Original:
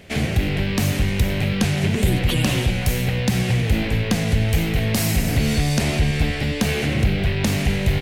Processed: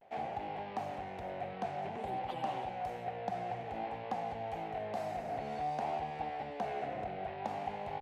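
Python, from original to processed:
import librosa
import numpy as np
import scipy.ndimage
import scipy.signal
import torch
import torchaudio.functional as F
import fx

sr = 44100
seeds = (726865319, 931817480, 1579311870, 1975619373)

y = fx.bandpass_q(x, sr, hz=770.0, q=6.9)
y = fx.vibrato(y, sr, rate_hz=0.54, depth_cents=74.0)
y = y * librosa.db_to_amplitude(1.5)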